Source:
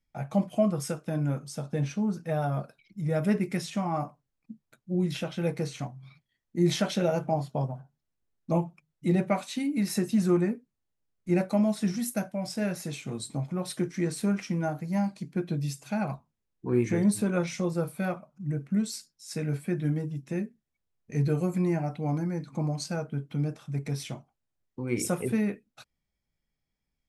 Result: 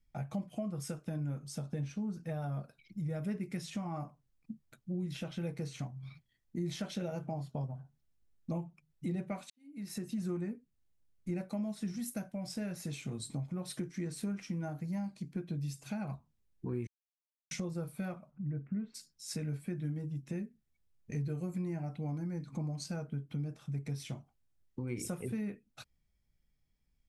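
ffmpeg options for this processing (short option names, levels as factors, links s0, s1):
-filter_complex "[0:a]asplit=3[s0][s1][s2];[s0]afade=t=out:st=18.3:d=0.02[s3];[s1]lowpass=f=2300:w=0.5412,lowpass=f=2300:w=1.3066,afade=t=in:st=18.3:d=0.02,afade=t=out:st=18.94:d=0.02[s4];[s2]afade=t=in:st=18.94:d=0.02[s5];[s3][s4][s5]amix=inputs=3:normalize=0,asplit=4[s6][s7][s8][s9];[s6]atrim=end=9.5,asetpts=PTS-STARTPTS,afade=t=out:st=9.496:d=0.004:c=hsin[s10];[s7]atrim=start=9.5:end=16.87,asetpts=PTS-STARTPTS,afade=t=in:d=0.8:c=qua,afade=t=out:st=7.366:d=0.004:c=hsin[s11];[s8]atrim=start=16.87:end=17.51,asetpts=PTS-STARTPTS,volume=0[s12];[s9]atrim=start=17.51,asetpts=PTS-STARTPTS,afade=t=in:d=0.004:c=hsin[s13];[s10][s11][s12][s13]concat=n=4:v=0:a=1,lowshelf=f=130:g=9,acompressor=threshold=0.0126:ratio=3,equalizer=f=760:t=o:w=2.1:g=-2.5"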